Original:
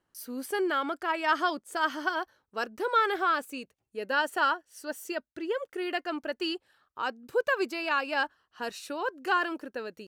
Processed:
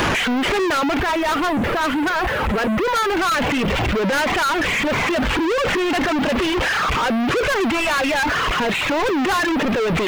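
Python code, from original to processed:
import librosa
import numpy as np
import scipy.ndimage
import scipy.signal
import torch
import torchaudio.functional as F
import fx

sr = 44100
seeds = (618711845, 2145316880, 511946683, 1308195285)

y = fx.delta_mod(x, sr, bps=16000, step_db=-23.5)
y = fx.dereverb_blind(y, sr, rt60_s=1.8)
y = fx.lowpass(y, sr, hz=1400.0, slope=6, at=(0.99, 3.17))
y = fx.leveller(y, sr, passes=5)
y = y * librosa.db_to_amplitude(-1.0)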